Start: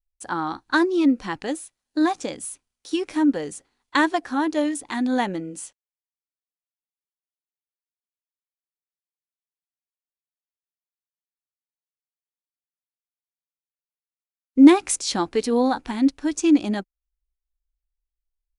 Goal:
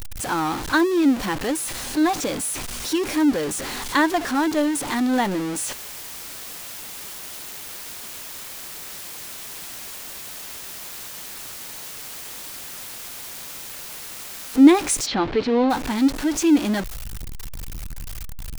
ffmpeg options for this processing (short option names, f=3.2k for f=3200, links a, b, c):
-filter_complex "[0:a]aeval=exprs='val(0)+0.5*0.0708*sgn(val(0))':c=same,asplit=3[a][b][c];[a]afade=t=out:st=15.05:d=0.02[d];[b]lowpass=f=4k:w=0.5412,lowpass=f=4k:w=1.3066,afade=t=in:st=15.05:d=0.02,afade=t=out:st=15.69:d=0.02[e];[c]afade=t=in:st=15.69:d=0.02[f];[d][e][f]amix=inputs=3:normalize=0,volume=-1dB"